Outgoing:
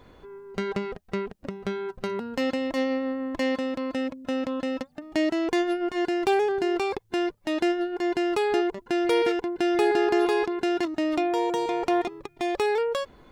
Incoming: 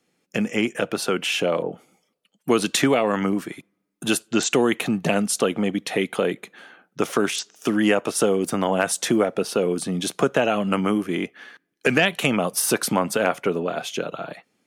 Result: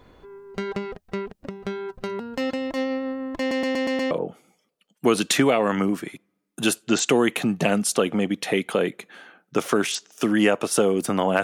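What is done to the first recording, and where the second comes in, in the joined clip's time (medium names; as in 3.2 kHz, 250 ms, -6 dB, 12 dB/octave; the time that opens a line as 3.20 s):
outgoing
3.39 s: stutter in place 0.12 s, 6 plays
4.11 s: go over to incoming from 1.55 s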